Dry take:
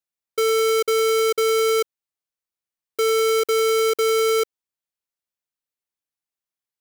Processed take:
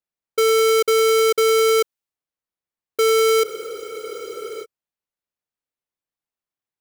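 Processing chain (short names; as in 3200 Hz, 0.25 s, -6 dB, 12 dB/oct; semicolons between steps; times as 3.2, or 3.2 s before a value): spectral freeze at 3.45, 1.19 s; mismatched tape noise reduction decoder only; gain +3 dB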